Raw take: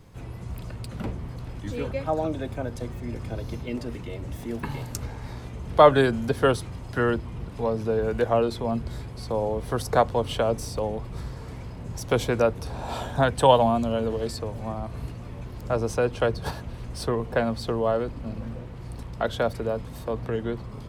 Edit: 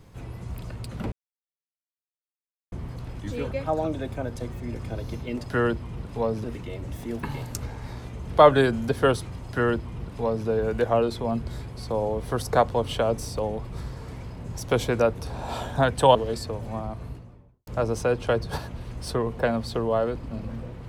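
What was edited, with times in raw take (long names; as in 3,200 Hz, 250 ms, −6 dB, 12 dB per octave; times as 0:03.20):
0:01.12: splice in silence 1.60 s
0:06.87–0:07.87: duplicate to 0:03.84
0:13.55–0:14.08: remove
0:14.69–0:15.60: fade out and dull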